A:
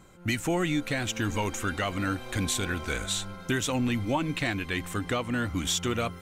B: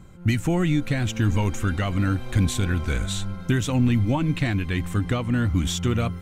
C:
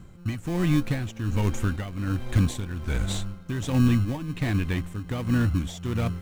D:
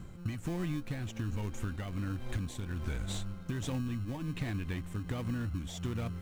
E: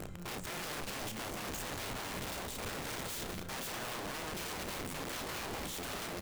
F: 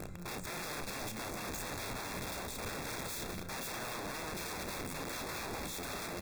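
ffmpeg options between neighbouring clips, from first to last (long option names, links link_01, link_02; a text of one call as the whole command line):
ffmpeg -i in.wav -af "bass=frequency=250:gain=12,treble=frequency=4000:gain=-2" out.wav
ffmpeg -i in.wav -filter_complex "[0:a]tremolo=f=1.3:d=0.7,asplit=2[link_01][link_02];[link_02]acrusher=samples=32:mix=1:aa=0.000001,volume=-6dB[link_03];[link_01][link_03]amix=inputs=2:normalize=0,volume=-3dB" out.wav
ffmpeg -i in.wav -af "acompressor=threshold=-32dB:ratio=10" out.wav
ffmpeg -i in.wav -filter_complex "[0:a]aeval=exprs='(mod(84.1*val(0)+1,2)-1)/84.1':channel_layout=same,asplit=2[link_01][link_02];[link_02]adelay=32,volume=-11dB[link_03];[link_01][link_03]amix=inputs=2:normalize=0,aecho=1:1:193:0.282,volume=2dB" out.wav
ffmpeg -i in.wav -af "asuperstop=centerf=3000:order=20:qfactor=5.9" out.wav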